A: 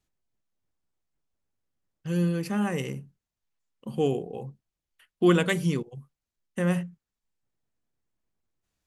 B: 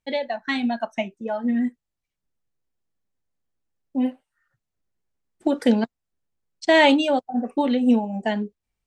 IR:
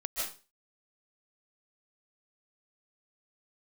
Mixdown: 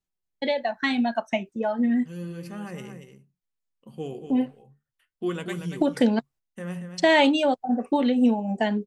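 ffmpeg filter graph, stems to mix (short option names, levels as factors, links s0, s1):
-filter_complex "[0:a]flanger=delay=5.1:depth=8.9:regen=63:speed=0.34:shape=sinusoidal,volume=0.596,asplit=2[s0][s1];[s1]volume=0.376[s2];[1:a]agate=range=0.0794:threshold=0.00501:ratio=16:detection=peak,adelay=350,volume=1.41[s3];[s2]aecho=0:1:233:1[s4];[s0][s3][s4]amix=inputs=3:normalize=0,acompressor=threshold=0.0562:ratio=1.5"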